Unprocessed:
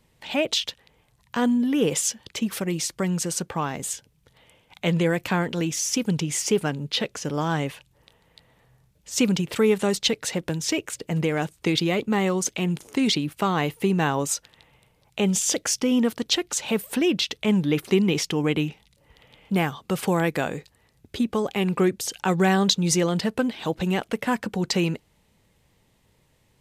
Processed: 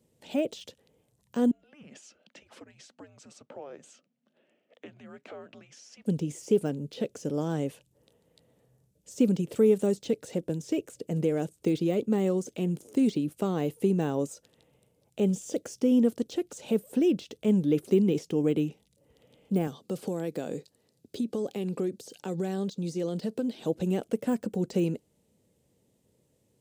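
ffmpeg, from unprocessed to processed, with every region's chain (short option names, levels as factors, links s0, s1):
-filter_complex "[0:a]asettb=1/sr,asplit=3[s0][s1][s2];[s0]atrim=end=1.514[s3];[s1]atrim=start=1.51:end=6.06,asetpts=PTS-STARTPTS,afade=t=in:d=0.004:c=qsin,afade=t=out:st=4.546:d=0.004:c=qsin,acompressor=threshold=0.0398:ratio=4:attack=3.2:release=140:knee=1:detection=peak,afreqshift=-290,highpass=430,lowpass=2800[s4];[s2]atrim=start=6.056[s5];[s3][s4]acrossfade=d=0.004:c1=hsin:c2=qsin[s6];[s6][s5]acrossfade=d=0.004:c1=qsin:c2=hsin,asettb=1/sr,asplit=3[s7][s8][s9];[s7]atrim=end=19.674[s10];[s8]atrim=start=19.67:end=23.6,asetpts=PTS-STARTPTS,afade=t=in:d=0.004:c=qsin,afade=t=out:st=3.926:d=0.004:c=qsin,equalizer=f=4400:w=2:g=7.5,acompressor=threshold=0.0631:ratio=4:attack=3.2:release=140:knee=1:detection=peak,highpass=120[s11];[s9]atrim=start=23.596[s12];[s10][s11]acrossfade=d=0.004:c1=hsin:c2=qsin[s13];[s13][s12]acrossfade=d=0.004:c1=qsin:c2=hsin,highpass=76,deesser=0.8,equalizer=f=250:t=o:w=1:g=5,equalizer=f=500:t=o:w=1:g=7,equalizer=f=1000:t=o:w=1:g=-8,equalizer=f=2000:t=o:w=1:g=-8,equalizer=f=4000:t=o:w=1:g=-4,equalizer=f=8000:t=o:w=1:g=4,volume=0.447"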